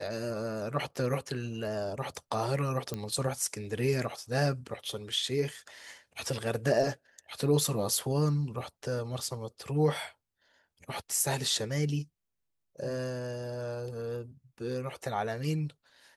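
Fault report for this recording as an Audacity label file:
2.940000	2.940000	pop -20 dBFS

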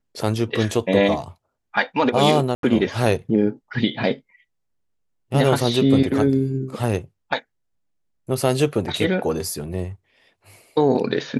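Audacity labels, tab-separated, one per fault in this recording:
2.550000	2.630000	gap 82 ms

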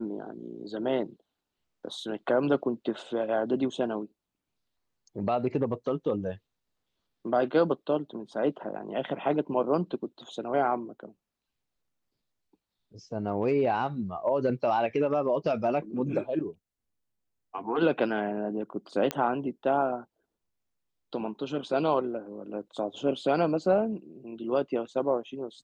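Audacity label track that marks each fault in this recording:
19.110000	19.110000	pop -13 dBFS

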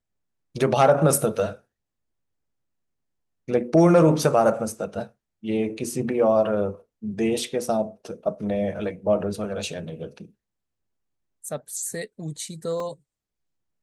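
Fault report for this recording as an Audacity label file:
12.800000	12.800000	gap 2.6 ms

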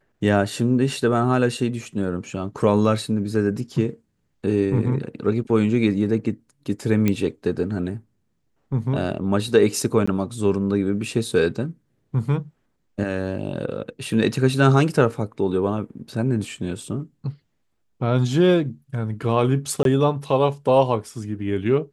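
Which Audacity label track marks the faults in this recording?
7.080000	7.080000	pop -8 dBFS
10.060000	10.070000	gap 15 ms
19.830000	19.850000	gap 22 ms

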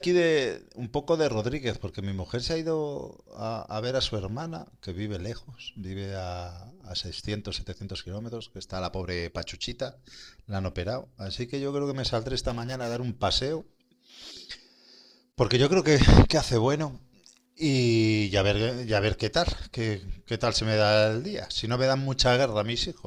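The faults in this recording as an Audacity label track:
12.480000	12.970000	clipped -28 dBFS

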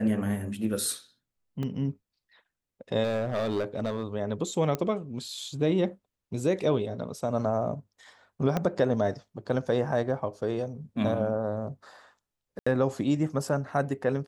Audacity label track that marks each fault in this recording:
1.630000	1.630000	gap 2.4 ms
3.030000	4.040000	clipped -24 dBFS
4.750000	4.750000	pop -16 dBFS
8.570000	8.570000	pop -14 dBFS
12.590000	12.660000	gap 75 ms

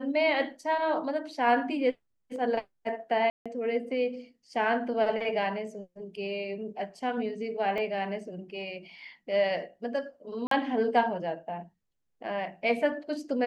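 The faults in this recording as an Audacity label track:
3.300000	3.460000	gap 0.156 s
7.780000	7.780000	gap 2.7 ms
10.470000	10.510000	gap 43 ms

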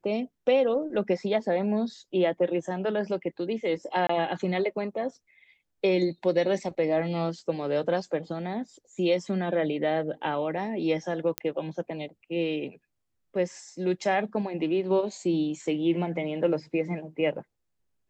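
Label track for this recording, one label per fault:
4.070000	4.090000	gap 24 ms
11.380000	11.380000	pop -10 dBFS

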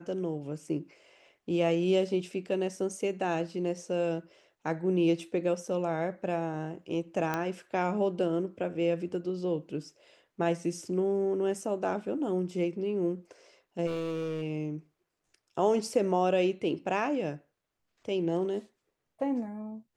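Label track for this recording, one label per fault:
7.340000	7.340000	pop -16 dBFS
13.860000	14.420000	clipped -29.5 dBFS

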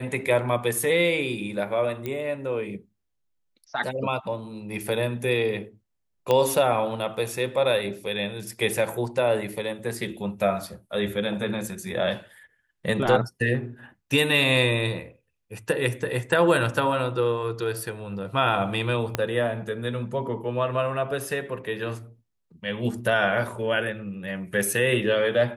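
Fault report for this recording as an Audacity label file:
2.060000	2.060000	pop -17 dBFS
6.310000	6.310000	pop -10 dBFS
19.150000	19.150000	pop -9 dBFS

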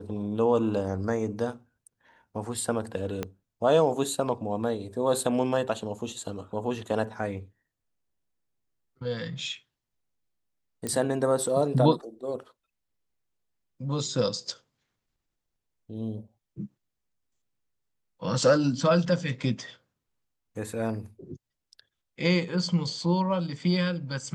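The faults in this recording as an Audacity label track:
3.230000	3.230000	pop -16 dBFS
10.870000	10.870000	pop -18 dBFS

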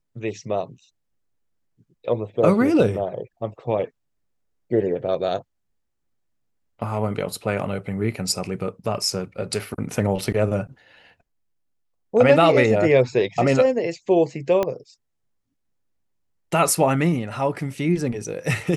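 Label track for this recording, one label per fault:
14.630000	14.630000	pop -10 dBFS

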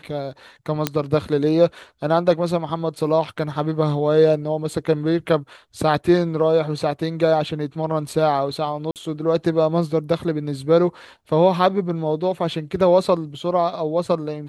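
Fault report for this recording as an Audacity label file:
0.870000	0.870000	pop -4 dBFS
8.910000	8.960000	gap 48 ms

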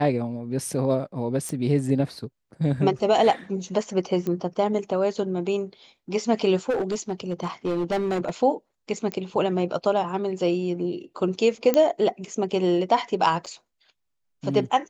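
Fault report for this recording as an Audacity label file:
1.490000	1.490000	pop
4.270000	4.270000	pop -17 dBFS
6.690000	8.300000	clipped -21 dBFS
9.120000	9.120000	pop -15 dBFS
11.740000	11.740000	pop -8 dBFS
13.460000	13.470000	gap 6.4 ms

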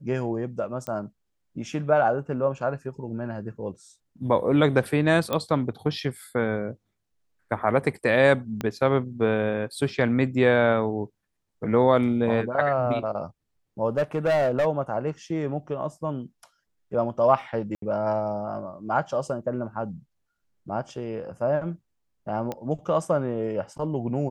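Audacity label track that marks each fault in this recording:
0.870000	0.870000	pop -18 dBFS
5.330000	5.330000	pop -12 dBFS
8.610000	8.610000	pop -15 dBFS
13.980000	14.670000	clipped -18.5 dBFS
17.750000	17.820000	gap 73 ms
22.520000	22.520000	pop -18 dBFS

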